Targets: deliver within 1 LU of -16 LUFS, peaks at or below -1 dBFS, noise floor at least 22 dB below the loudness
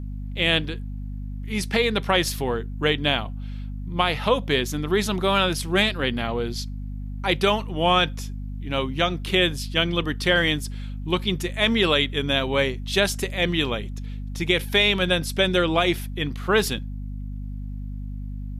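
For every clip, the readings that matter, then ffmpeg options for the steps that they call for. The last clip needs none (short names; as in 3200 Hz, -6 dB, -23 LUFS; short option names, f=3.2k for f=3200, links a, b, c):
hum 50 Hz; harmonics up to 250 Hz; hum level -29 dBFS; loudness -22.5 LUFS; peak -7.0 dBFS; loudness target -16.0 LUFS
-> -af "bandreject=f=50:t=h:w=4,bandreject=f=100:t=h:w=4,bandreject=f=150:t=h:w=4,bandreject=f=200:t=h:w=4,bandreject=f=250:t=h:w=4"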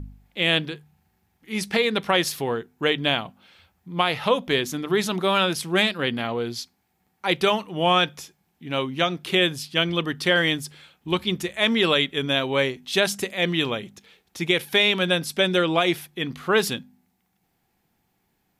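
hum none; loudness -23.0 LUFS; peak -7.0 dBFS; loudness target -16.0 LUFS
-> -af "volume=7dB,alimiter=limit=-1dB:level=0:latency=1"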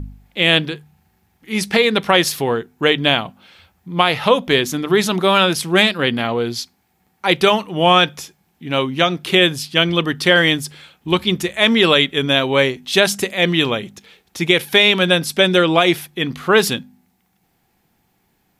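loudness -16.0 LUFS; peak -1.0 dBFS; noise floor -64 dBFS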